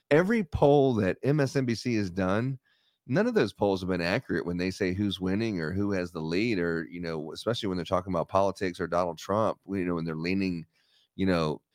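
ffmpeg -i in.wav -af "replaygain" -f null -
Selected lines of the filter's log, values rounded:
track_gain = +8.6 dB
track_peak = 0.266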